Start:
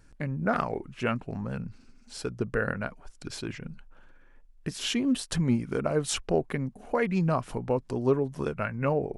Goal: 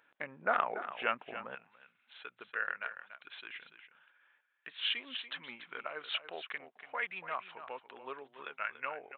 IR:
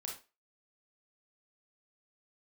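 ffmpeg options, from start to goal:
-af "aecho=1:1:287:0.266,aresample=8000,aresample=44100,asetnsamples=nb_out_samples=441:pad=0,asendcmd='1.55 highpass f 1500',highpass=720"

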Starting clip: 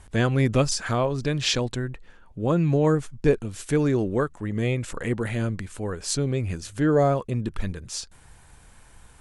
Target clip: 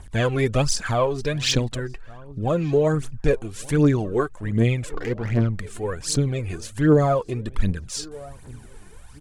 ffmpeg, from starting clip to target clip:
ffmpeg -i in.wav -filter_complex "[0:a]asplit=3[link_01][link_02][link_03];[link_01]afade=type=out:start_time=4.88:duration=0.02[link_04];[link_02]adynamicsmooth=sensitivity=3:basefreq=950,afade=type=in:start_time=4.88:duration=0.02,afade=type=out:start_time=5.53:duration=0.02[link_05];[link_03]afade=type=in:start_time=5.53:duration=0.02[link_06];[link_04][link_05][link_06]amix=inputs=3:normalize=0,asplit=2[link_07][link_08];[link_08]adelay=1178,lowpass=frequency=1300:poles=1,volume=-20.5dB,asplit=2[link_09][link_10];[link_10]adelay=1178,lowpass=frequency=1300:poles=1,volume=0.5,asplit=2[link_11][link_12];[link_12]adelay=1178,lowpass=frequency=1300:poles=1,volume=0.5,asplit=2[link_13][link_14];[link_14]adelay=1178,lowpass=frequency=1300:poles=1,volume=0.5[link_15];[link_07][link_09][link_11][link_13][link_15]amix=inputs=5:normalize=0,aphaser=in_gain=1:out_gain=1:delay=2.9:decay=0.61:speed=1.3:type=triangular" out.wav

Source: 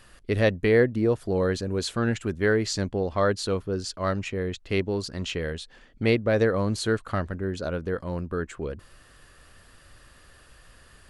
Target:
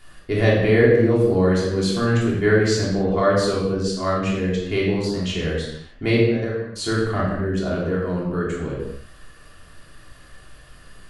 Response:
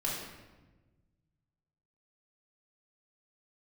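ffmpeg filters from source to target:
-filter_complex "[0:a]asplit=3[link_01][link_02][link_03];[link_01]afade=type=out:start_time=6.23:duration=0.02[link_04];[link_02]agate=range=-26dB:threshold=-18dB:ratio=16:detection=peak,afade=type=in:start_time=6.23:duration=0.02,afade=type=out:start_time=6.75:duration=0.02[link_05];[link_03]afade=type=in:start_time=6.75:duration=0.02[link_06];[link_04][link_05][link_06]amix=inputs=3:normalize=0[link_07];[1:a]atrim=start_sample=2205,afade=type=out:start_time=0.35:duration=0.01,atrim=end_sample=15876[link_08];[link_07][link_08]afir=irnorm=-1:irlink=0"

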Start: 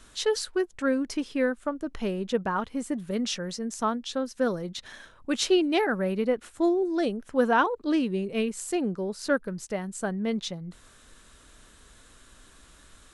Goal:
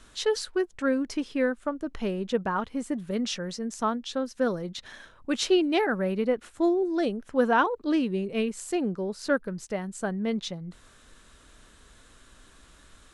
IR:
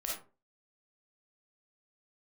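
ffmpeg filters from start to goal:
-af "highshelf=frequency=8600:gain=-6.5"

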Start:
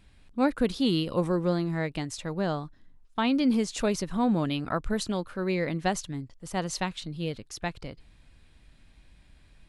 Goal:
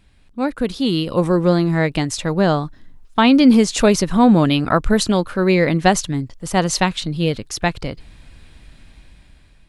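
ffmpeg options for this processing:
ffmpeg -i in.wav -af "dynaudnorm=framelen=470:gausssize=5:maxgain=10.5dB,volume=3dB" out.wav

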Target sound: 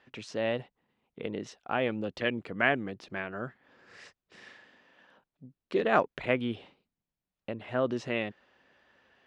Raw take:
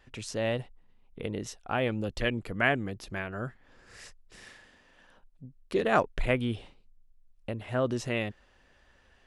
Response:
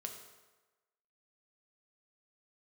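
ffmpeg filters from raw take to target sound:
-af "highpass=170,lowpass=4100"

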